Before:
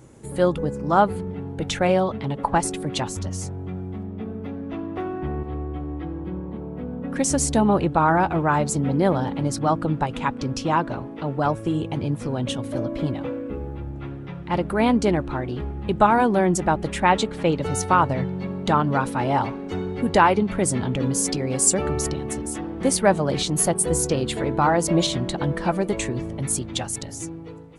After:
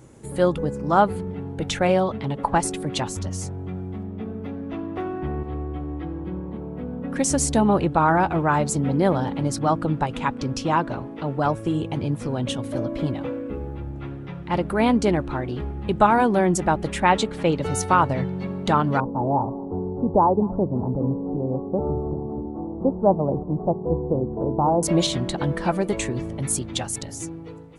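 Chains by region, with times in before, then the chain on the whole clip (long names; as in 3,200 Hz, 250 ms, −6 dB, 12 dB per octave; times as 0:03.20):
0:19.00–0:24.83: Butterworth low-pass 1,000 Hz 48 dB per octave + single-tap delay 224 ms −22.5 dB
whole clip: no processing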